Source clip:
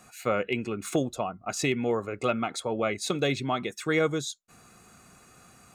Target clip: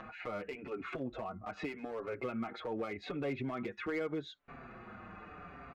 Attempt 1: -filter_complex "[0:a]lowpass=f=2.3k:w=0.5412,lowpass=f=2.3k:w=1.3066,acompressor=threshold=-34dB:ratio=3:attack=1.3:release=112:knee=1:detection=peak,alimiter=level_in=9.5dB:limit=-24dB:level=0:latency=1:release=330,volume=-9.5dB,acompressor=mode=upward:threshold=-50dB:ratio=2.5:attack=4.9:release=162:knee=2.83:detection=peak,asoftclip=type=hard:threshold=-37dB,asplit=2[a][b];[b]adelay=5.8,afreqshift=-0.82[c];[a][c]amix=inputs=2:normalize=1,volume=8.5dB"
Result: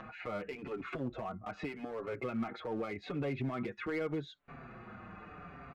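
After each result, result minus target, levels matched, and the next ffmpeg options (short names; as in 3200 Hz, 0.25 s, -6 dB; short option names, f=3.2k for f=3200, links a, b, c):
compressor: peak gain reduction -5 dB; 125 Hz band +3.5 dB
-filter_complex "[0:a]lowpass=f=2.3k:w=0.5412,lowpass=f=2.3k:w=1.3066,acompressor=threshold=-42.5dB:ratio=3:attack=1.3:release=112:knee=1:detection=peak,alimiter=level_in=9.5dB:limit=-24dB:level=0:latency=1:release=330,volume=-9.5dB,acompressor=mode=upward:threshold=-50dB:ratio=2.5:attack=4.9:release=162:knee=2.83:detection=peak,asoftclip=type=hard:threshold=-37dB,asplit=2[a][b];[b]adelay=5.8,afreqshift=-0.82[c];[a][c]amix=inputs=2:normalize=1,volume=8.5dB"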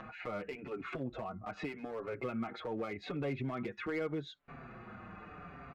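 125 Hz band +3.5 dB
-filter_complex "[0:a]lowpass=f=2.3k:w=0.5412,lowpass=f=2.3k:w=1.3066,equalizer=f=140:t=o:w=0.8:g=-5.5,acompressor=threshold=-42.5dB:ratio=3:attack=1.3:release=112:knee=1:detection=peak,alimiter=level_in=9.5dB:limit=-24dB:level=0:latency=1:release=330,volume=-9.5dB,acompressor=mode=upward:threshold=-50dB:ratio=2.5:attack=4.9:release=162:knee=2.83:detection=peak,asoftclip=type=hard:threshold=-37dB,asplit=2[a][b];[b]adelay=5.8,afreqshift=-0.82[c];[a][c]amix=inputs=2:normalize=1,volume=8.5dB"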